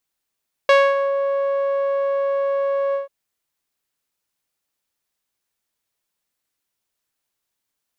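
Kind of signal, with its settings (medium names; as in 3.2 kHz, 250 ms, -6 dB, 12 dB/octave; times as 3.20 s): synth note saw C#5 12 dB/octave, low-pass 820 Hz, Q 0.84, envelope 2 oct, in 0.43 s, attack 3 ms, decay 0.25 s, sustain -8 dB, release 0.14 s, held 2.25 s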